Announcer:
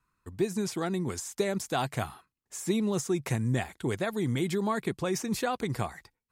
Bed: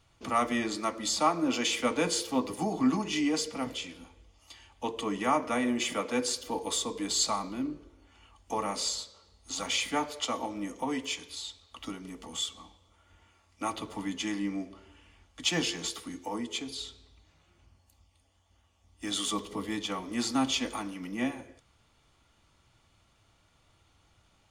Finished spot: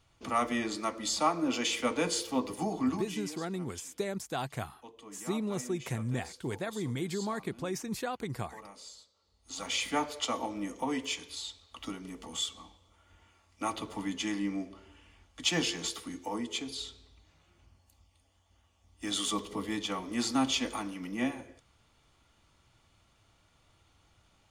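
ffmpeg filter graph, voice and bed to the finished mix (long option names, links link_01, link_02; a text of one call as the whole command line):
ffmpeg -i stem1.wav -i stem2.wav -filter_complex "[0:a]adelay=2600,volume=-5.5dB[link_01];[1:a]volume=15dB,afade=type=out:start_time=2.71:duration=0.59:silence=0.16788,afade=type=in:start_time=9.16:duration=0.79:silence=0.141254[link_02];[link_01][link_02]amix=inputs=2:normalize=0" out.wav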